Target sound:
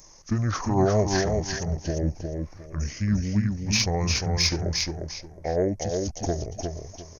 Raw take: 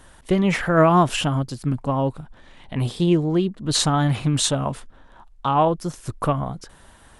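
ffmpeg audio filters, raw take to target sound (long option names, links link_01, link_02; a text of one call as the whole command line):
ffmpeg -i in.wav -af "aecho=1:1:355|710|1065|1420:0.631|0.164|0.0427|0.0111,asetrate=26222,aresample=44100,atempo=1.68179,aexciter=amount=6.4:drive=7.6:freq=5300,volume=-6dB" out.wav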